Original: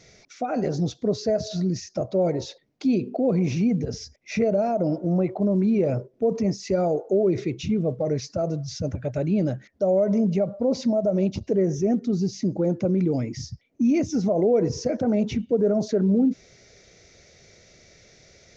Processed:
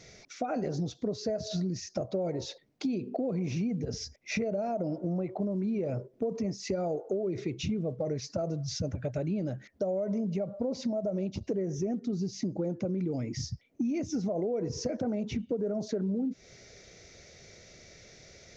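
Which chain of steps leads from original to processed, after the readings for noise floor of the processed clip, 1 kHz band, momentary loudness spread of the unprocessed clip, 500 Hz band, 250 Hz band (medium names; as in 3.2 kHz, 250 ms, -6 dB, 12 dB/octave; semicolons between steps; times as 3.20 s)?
-62 dBFS, -8.0 dB, 7 LU, -9.5 dB, -9.0 dB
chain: compression 6:1, threshold -29 dBFS, peak gain reduction 12.5 dB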